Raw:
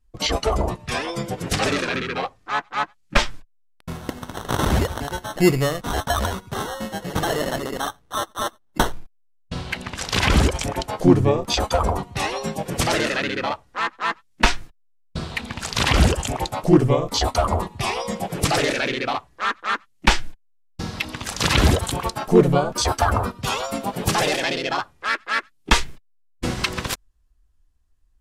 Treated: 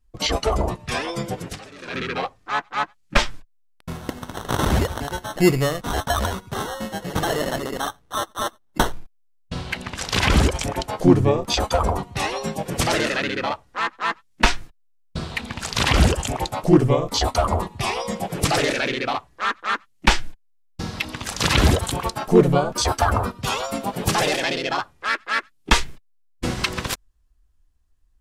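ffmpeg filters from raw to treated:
ffmpeg -i in.wav -filter_complex "[0:a]asplit=3[link_01][link_02][link_03];[link_01]atrim=end=1.68,asetpts=PTS-STARTPTS,afade=type=out:start_time=1.37:duration=0.31:curve=qua:silence=0.0794328[link_04];[link_02]atrim=start=1.68:end=1.71,asetpts=PTS-STARTPTS,volume=-22dB[link_05];[link_03]atrim=start=1.71,asetpts=PTS-STARTPTS,afade=type=in:duration=0.31:curve=qua:silence=0.0794328[link_06];[link_04][link_05][link_06]concat=n=3:v=0:a=1" out.wav

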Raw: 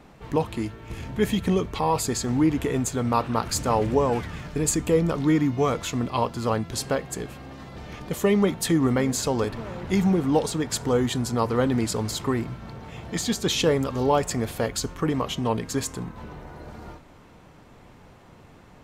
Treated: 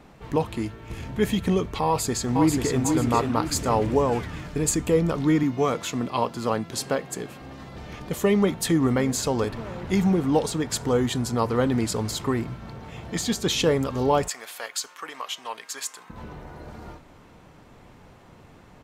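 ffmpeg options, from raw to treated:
ffmpeg -i in.wav -filter_complex "[0:a]asplit=2[link_01][link_02];[link_02]afade=type=in:start_time=1.86:duration=0.01,afade=type=out:start_time=2.82:duration=0.01,aecho=0:1:490|980|1470|1960|2450:0.668344|0.267338|0.106935|0.042774|0.0171096[link_03];[link_01][link_03]amix=inputs=2:normalize=0,asettb=1/sr,asplit=3[link_04][link_05][link_06];[link_04]atrim=end=5.434[link_07];[link_05]atrim=start=5.43:end=7.42,asetpts=PTS-STARTPTS,afade=type=in:duration=0.004:curve=qsin,afade=type=out:start_time=1.986:duration=0.004:curve=qsin,highpass=140[link_08];[link_06]atrim=start=7.416[link_09];[link_07][link_08]acrossfade=duration=0.004:curve1=hsin:curve2=qsin[link_10];[link_10][link_09]acrossfade=duration=0.004:curve1=qsin:curve2=hsin,asettb=1/sr,asplit=3[link_11][link_12][link_13];[link_11]atrim=end=14.284[link_14];[link_12]atrim=start=14.28:end=16.1,asetpts=PTS-STARTPTS,afade=type=in:duration=0.004:curve=qsin,afade=type=out:start_time=1.816:duration=0.004:curve=qsin,highpass=1100[link_15];[link_13]atrim=start=16.096[link_16];[link_14][link_15]acrossfade=duration=0.004:curve1=hsin:curve2=qsin[link_17];[link_17][link_16]acrossfade=duration=0.004:curve1=qsin:curve2=hsin" out.wav

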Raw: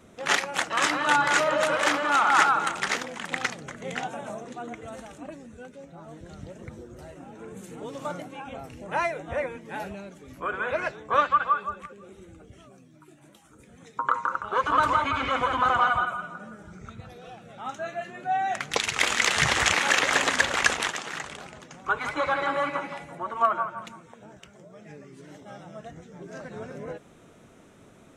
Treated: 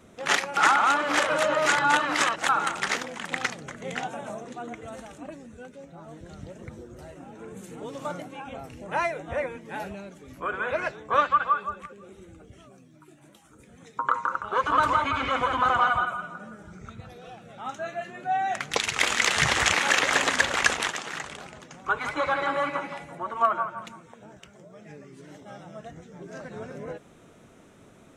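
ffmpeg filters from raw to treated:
ffmpeg -i in.wav -filter_complex "[0:a]asplit=3[link_01][link_02][link_03];[link_01]atrim=end=0.572[link_04];[link_02]atrim=start=0.568:end=2.492,asetpts=PTS-STARTPTS,areverse[link_05];[link_03]atrim=start=2.488[link_06];[link_04][link_05]acrossfade=duration=0.004:curve1=hsin:curve2=hsin[link_07];[link_07][link_06]acrossfade=duration=0.004:curve1=hsin:curve2=hsin" out.wav

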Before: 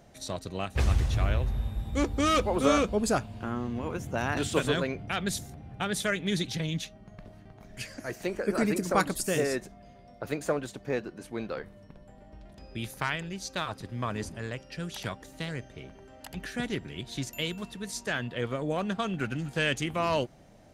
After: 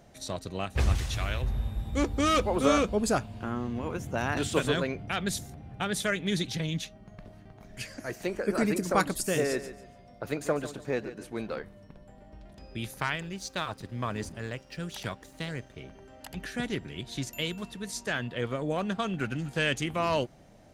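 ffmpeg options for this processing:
ffmpeg -i in.wav -filter_complex "[0:a]asettb=1/sr,asplit=3[link_01][link_02][link_03];[link_01]atrim=end=0.954[link_04];[link_02]atrim=start=0.95:end=1.42,asetpts=PTS-STARTPTS,afade=type=in:duration=0.004:curve=qsin,afade=type=out:start_time=0.466:duration=0.004:curve=qsin,tiltshelf=frequency=1300:gain=-6[link_05];[link_03]atrim=start=1.416[link_06];[link_04][link_05]acrossfade=duration=0.004:curve1=hsin:curve2=qsin[link_07];[link_07][link_06]acrossfade=duration=0.004:curve1=qsin:curve2=hsin,asettb=1/sr,asplit=3[link_08][link_09][link_10];[link_08]atrim=end=9.354[link_11];[link_09]atrim=start=9.35:end=11.6,asetpts=PTS-STARTPTS,afade=type=in:duration=0.004:curve=qsin,afade=type=out:start_time=2.246:duration=0.004:curve=qsin,aecho=1:1:143|286|429:0.224|0.0627|0.0176,atrim=end_sample=99225[link_12];[link_10]atrim=start=11.596[link_13];[link_11][link_12]acrossfade=duration=0.004:curve1=hsin:curve2=qsin[link_14];[link_14][link_13]acrossfade=duration=0.004:curve1=qsin:curve2=hsin,asettb=1/sr,asplit=3[link_15][link_16][link_17];[link_15]atrim=end=13.144[link_18];[link_16]atrim=start=13.14:end=15.77,asetpts=PTS-STARTPTS,afade=type=in:duration=0.004:curve=qsin,afade=type=out:start_time=2.626:duration=0.004:curve=qsin,aeval=exprs='sgn(val(0))*max(abs(val(0))-0.00119,0)':channel_layout=same[link_19];[link_17]atrim=start=15.766[link_20];[link_18][link_19]acrossfade=duration=0.004:curve1=hsin:curve2=qsin[link_21];[link_21][link_20]acrossfade=duration=0.004:curve1=qsin:curve2=hsin" out.wav

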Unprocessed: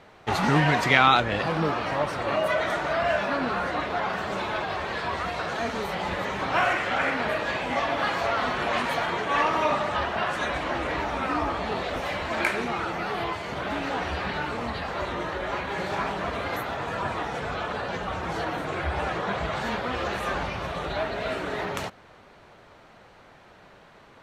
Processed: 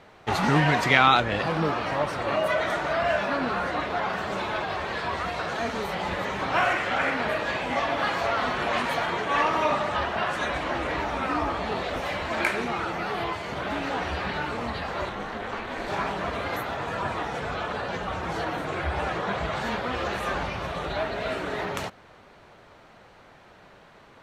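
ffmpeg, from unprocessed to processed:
ffmpeg -i in.wav -filter_complex "[0:a]asettb=1/sr,asplit=3[link_01][link_02][link_03];[link_01]atrim=end=15.094[link_04];[link_02]atrim=start=15.09:end=15.88,asetpts=PTS-STARTPTS,afade=type=in:duration=0.004:curve=qsin,afade=type=out:start_time=0.786:duration=0.004:curve=qsin,aeval=exprs='val(0)*sin(2*PI*150*n/s)':channel_layout=same[link_05];[link_03]atrim=start=15.876[link_06];[link_04][link_05]acrossfade=duration=0.004:curve1=hsin:curve2=qsin[link_07];[link_07][link_06]acrossfade=duration=0.004:curve1=qsin:curve2=hsin" out.wav

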